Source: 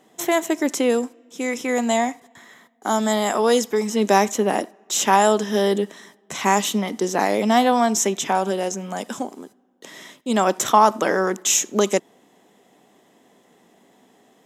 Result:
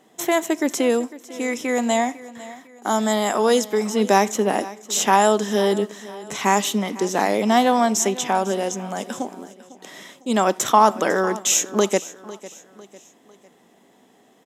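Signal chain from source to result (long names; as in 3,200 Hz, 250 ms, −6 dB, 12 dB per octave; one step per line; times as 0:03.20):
repeating echo 501 ms, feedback 42%, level −18 dB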